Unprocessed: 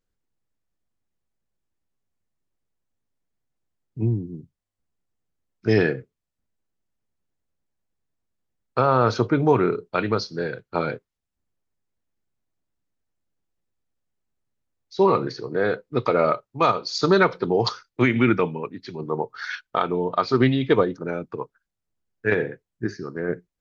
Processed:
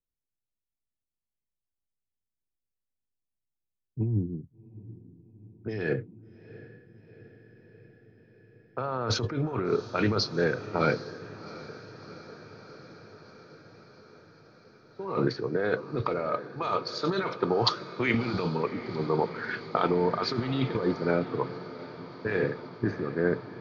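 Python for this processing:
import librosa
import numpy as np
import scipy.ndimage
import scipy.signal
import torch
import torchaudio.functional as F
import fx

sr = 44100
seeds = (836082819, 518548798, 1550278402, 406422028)

y = fx.low_shelf(x, sr, hz=450.0, db=-7.5, at=(16.48, 18.14))
y = fx.env_lowpass(y, sr, base_hz=810.0, full_db=-15.0)
y = fx.over_compress(y, sr, threshold_db=-25.0, ratio=-1.0)
y = fx.echo_diffused(y, sr, ms=732, feedback_pct=78, wet_db=-12.5)
y = fx.band_widen(y, sr, depth_pct=40)
y = y * librosa.db_to_amplitude(-2.5)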